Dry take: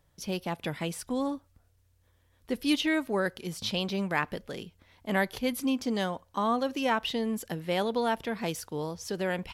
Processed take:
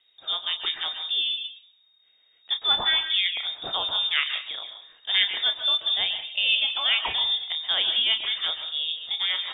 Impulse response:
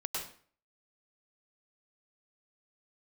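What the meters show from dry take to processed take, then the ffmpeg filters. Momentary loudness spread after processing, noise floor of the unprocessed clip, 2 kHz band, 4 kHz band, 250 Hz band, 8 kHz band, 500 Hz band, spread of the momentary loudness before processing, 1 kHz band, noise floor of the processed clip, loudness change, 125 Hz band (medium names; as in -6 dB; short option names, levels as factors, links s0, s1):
9 LU, -67 dBFS, +5.5 dB, +17.5 dB, under -20 dB, under -35 dB, -13.0 dB, 8 LU, -3.5 dB, -63 dBFS, +7.5 dB, under -15 dB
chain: -filter_complex "[0:a]asplit=2[s0][s1];[1:a]atrim=start_sample=2205,adelay=31[s2];[s1][s2]afir=irnorm=-1:irlink=0,volume=0.376[s3];[s0][s3]amix=inputs=2:normalize=0,lowpass=f=3200:t=q:w=0.5098,lowpass=f=3200:t=q:w=0.6013,lowpass=f=3200:t=q:w=0.9,lowpass=f=3200:t=q:w=2.563,afreqshift=-3800,volume=1.5"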